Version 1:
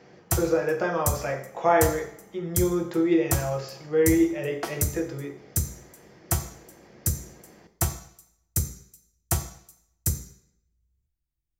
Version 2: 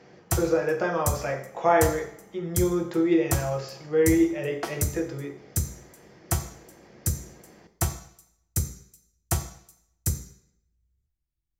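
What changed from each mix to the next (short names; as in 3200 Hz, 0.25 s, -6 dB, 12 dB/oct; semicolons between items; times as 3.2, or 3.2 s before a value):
background: add high shelf 11000 Hz -5.5 dB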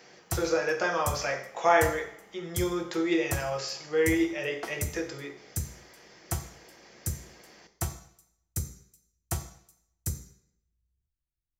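speech: add tilt +3.5 dB/oct; background -6.0 dB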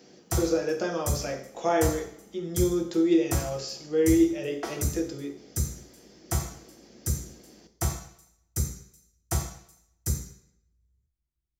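speech: add graphic EQ 250/1000/2000 Hz +11/-7/-9 dB; background: send +8.5 dB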